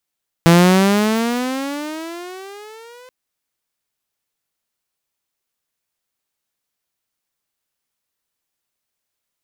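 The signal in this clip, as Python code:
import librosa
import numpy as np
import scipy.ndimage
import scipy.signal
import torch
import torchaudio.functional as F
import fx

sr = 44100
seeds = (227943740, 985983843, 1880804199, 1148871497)

y = fx.riser_tone(sr, length_s=2.63, level_db=-4, wave='saw', hz=166.0, rise_st=19.5, swell_db=-33.5)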